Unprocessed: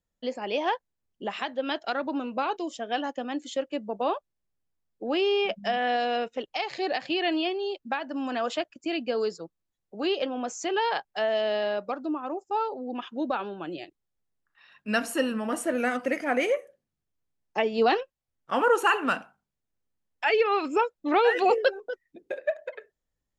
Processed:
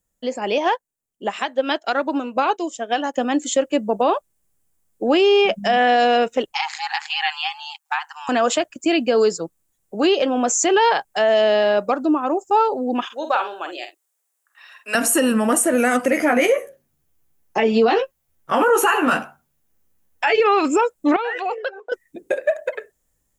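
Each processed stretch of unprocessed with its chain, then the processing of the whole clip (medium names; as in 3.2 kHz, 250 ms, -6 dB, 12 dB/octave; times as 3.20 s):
0.58–3.14 s: bass shelf 110 Hz -11 dB + upward expansion, over -49 dBFS
6.52–8.29 s: ring modulator 77 Hz + brick-wall FIR high-pass 750 Hz
13.05–14.95 s: Bessel high-pass 700 Hz, order 4 + doubling 48 ms -8 dB
16.10–20.40 s: peaking EQ 8.3 kHz -9 dB 0.58 oct + doubling 13 ms -2.5 dB
21.16–21.92 s: compression 2:1, threshold -38 dBFS + band-pass 650–3200 Hz
whole clip: resonant high shelf 6.1 kHz +9 dB, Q 1.5; peak limiter -20.5 dBFS; level rider gain up to 6 dB; trim +6 dB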